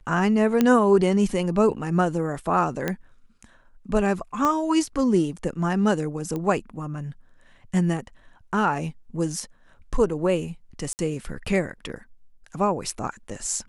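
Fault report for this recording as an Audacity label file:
0.610000	0.610000	pop -7 dBFS
2.880000	2.880000	pop -11 dBFS
4.450000	4.450000	pop -11 dBFS
6.360000	6.360000	pop -18 dBFS
10.930000	10.990000	gap 59 ms

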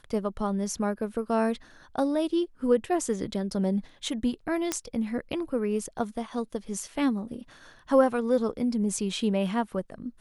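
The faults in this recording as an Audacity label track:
4.720000	4.720000	pop -11 dBFS

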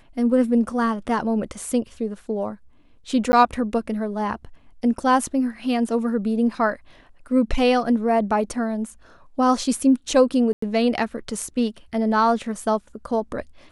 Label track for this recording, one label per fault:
3.320000	3.330000	gap 10 ms
10.530000	10.620000	gap 94 ms

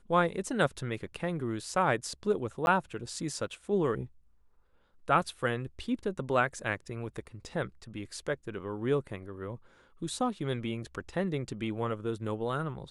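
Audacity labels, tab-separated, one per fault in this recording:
2.660000	2.670000	gap 11 ms

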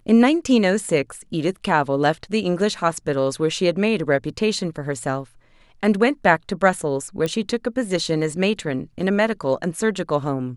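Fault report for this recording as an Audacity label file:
7.260000	7.260000	pop -12 dBFS

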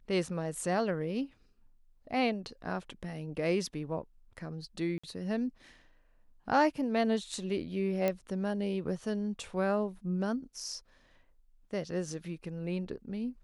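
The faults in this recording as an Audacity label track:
4.980000	5.040000	gap 55 ms
8.080000	8.080000	pop -17 dBFS

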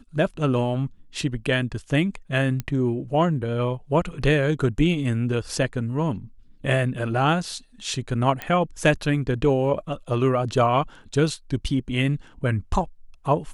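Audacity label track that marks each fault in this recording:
2.600000	2.600000	pop -14 dBFS
8.420000	8.420000	pop -13 dBFS

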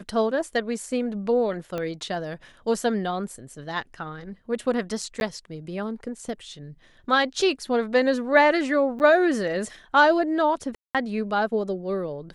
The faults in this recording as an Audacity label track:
1.780000	1.780000	pop -17 dBFS
5.200000	5.210000	gap 11 ms
8.990000	9.000000	gap 9.4 ms
10.750000	10.950000	gap 0.197 s

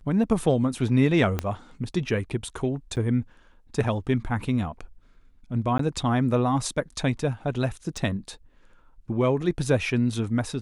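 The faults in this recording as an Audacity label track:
1.390000	1.390000	pop -12 dBFS
2.960000	2.970000	gap 8.6 ms
5.780000	5.790000	gap 13 ms
7.970000	7.970000	gap 2.3 ms

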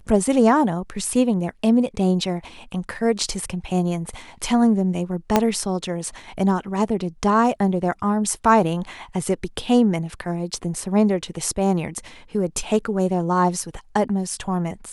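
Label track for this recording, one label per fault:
5.360000	5.360000	pop -2 dBFS

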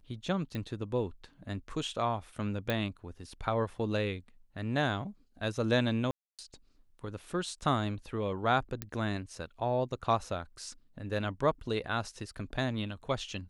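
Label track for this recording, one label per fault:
0.550000	0.550000	pop -25 dBFS
2.700000	2.700000	pop -18 dBFS
6.110000	6.390000	gap 0.277 s
8.820000	8.820000	pop -19 dBFS

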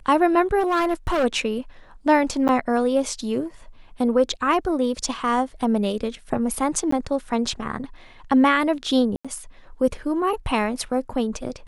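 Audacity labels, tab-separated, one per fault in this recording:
0.590000	1.250000	clipped -17.5 dBFS
2.480000	2.490000	gap 9.1 ms
6.910000	6.920000	gap 14 ms
9.160000	9.250000	gap 86 ms

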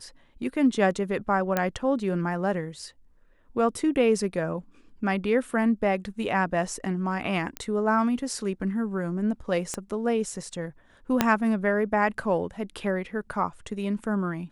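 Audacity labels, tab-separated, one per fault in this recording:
1.570000	1.570000	pop -10 dBFS
7.570000	7.570000	pop -15 dBFS
9.740000	9.740000	pop -16 dBFS
11.210000	11.210000	pop -4 dBFS

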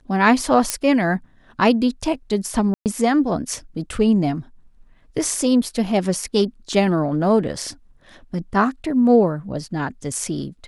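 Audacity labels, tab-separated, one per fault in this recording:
0.700000	0.700000	pop -3 dBFS
2.740000	2.860000	gap 0.118 s

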